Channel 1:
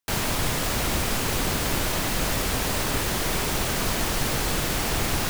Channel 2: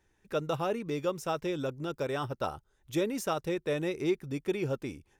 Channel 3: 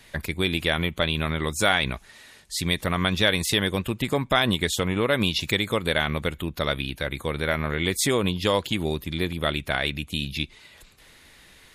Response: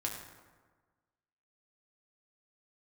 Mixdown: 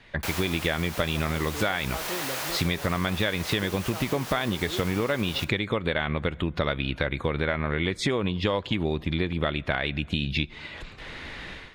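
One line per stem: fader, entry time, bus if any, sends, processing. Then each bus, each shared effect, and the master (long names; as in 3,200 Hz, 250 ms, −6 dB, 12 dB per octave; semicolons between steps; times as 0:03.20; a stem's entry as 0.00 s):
−5.0 dB, 0.15 s, send −13 dB, high-pass filter 540 Hz 12 dB per octave; parametric band 8,100 Hz −2.5 dB
−3.0 dB, 0.65 s, no send, no processing
0.0 dB, 0.00 s, send −23.5 dB, low-pass filter 3,100 Hz 12 dB per octave; automatic gain control gain up to 15 dB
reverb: on, RT60 1.4 s, pre-delay 5 ms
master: downward compressor 6 to 1, threshold −23 dBFS, peak gain reduction 14.5 dB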